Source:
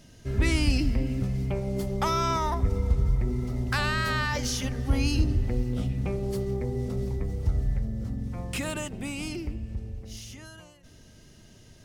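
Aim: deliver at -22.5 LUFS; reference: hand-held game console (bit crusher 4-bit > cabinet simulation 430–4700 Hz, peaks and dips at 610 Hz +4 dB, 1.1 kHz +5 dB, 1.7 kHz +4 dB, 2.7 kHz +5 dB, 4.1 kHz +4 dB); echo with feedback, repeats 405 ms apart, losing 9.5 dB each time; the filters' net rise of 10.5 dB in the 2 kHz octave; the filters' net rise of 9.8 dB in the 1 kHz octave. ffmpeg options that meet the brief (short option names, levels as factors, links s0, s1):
-af "equalizer=f=1000:t=o:g=6.5,equalizer=f=2000:t=o:g=6.5,aecho=1:1:405|810|1215|1620:0.335|0.111|0.0365|0.012,acrusher=bits=3:mix=0:aa=0.000001,highpass=430,equalizer=f=610:t=q:w=4:g=4,equalizer=f=1100:t=q:w=4:g=5,equalizer=f=1700:t=q:w=4:g=4,equalizer=f=2700:t=q:w=4:g=5,equalizer=f=4100:t=q:w=4:g=4,lowpass=f=4700:w=0.5412,lowpass=f=4700:w=1.3066,volume=1.06"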